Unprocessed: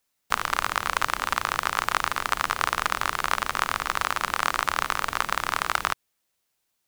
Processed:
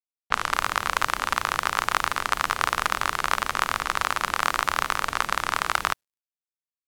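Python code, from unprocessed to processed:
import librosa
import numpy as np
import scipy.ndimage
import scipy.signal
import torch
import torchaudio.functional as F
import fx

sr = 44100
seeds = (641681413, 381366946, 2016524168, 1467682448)

y = fx.env_lowpass(x, sr, base_hz=2500.0, full_db=-22.5)
y = fx.quant_dither(y, sr, seeds[0], bits=12, dither='none')
y = F.gain(torch.from_numpy(y), 1.0).numpy()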